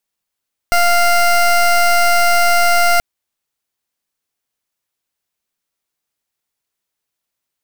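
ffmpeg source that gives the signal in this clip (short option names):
-f lavfi -i "aevalsrc='0.266*(2*lt(mod(697*t,1),0.2)-1)':d=2.28:s=44100"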